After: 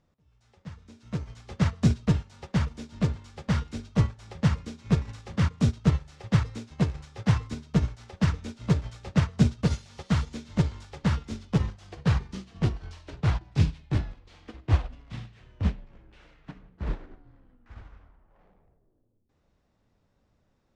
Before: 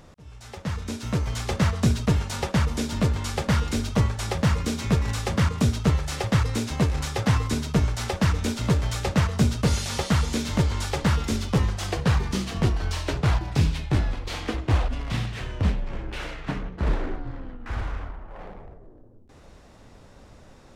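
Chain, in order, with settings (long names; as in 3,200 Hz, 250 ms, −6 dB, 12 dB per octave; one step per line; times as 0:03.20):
low-pass filter 6,800 Hz 12 dB per octave
low-shelf EQ 110 Hz −7.5 dB
soft clipping −12 dBFS, distortion −25 dB
bass and treble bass +7 dB, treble 0 dB
hum removal 130.2 Hz, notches 38
expander for the loud parts 2.5 to 1, over −29 dBFS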